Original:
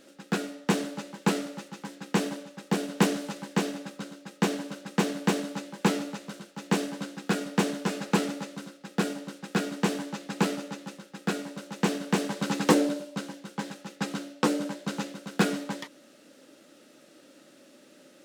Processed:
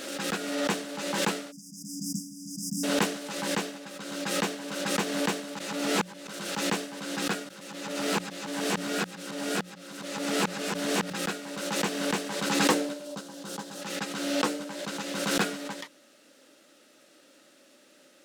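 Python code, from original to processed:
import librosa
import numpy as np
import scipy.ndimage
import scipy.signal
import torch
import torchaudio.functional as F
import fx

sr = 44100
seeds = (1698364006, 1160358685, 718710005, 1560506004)

y = fx.spec_erase(x, sr, start_s=1.51, length_s=1.33, low_hz=290.0, high_hz=4800.0)
y = fx.peak_eq(y, sr, hz=2200.0, db=-10.0, octaves=0.9, at=(13.05, 13.82))
y = fx.edit(y, sr, fx.reverse_span(start_s=5.59, length_s=0.68),
    fx.reverse_span(start_s=7.49, length_s=3.61), tone=tone)
y = fx.low_shelf(y, sr, hz=470.0, db=-9.0)
y = fx.hum_notches(y, sr, base_hz=60, count=3)
y = fx.pre_swell(y, sr, db_per_s=35.0)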